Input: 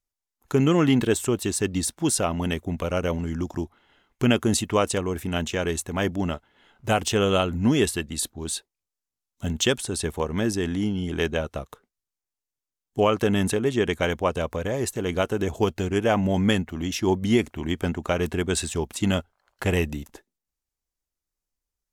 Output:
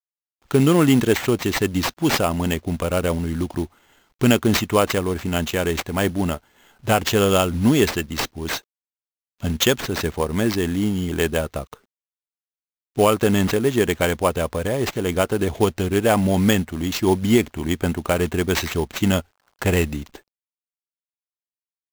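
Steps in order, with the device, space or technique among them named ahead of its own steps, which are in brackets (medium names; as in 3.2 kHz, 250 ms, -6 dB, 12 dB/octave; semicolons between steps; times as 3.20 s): early companding sampler (sample-rate reducer 10 kHz, jitter 0%; companded quantiser 6-bit); trim +4 dB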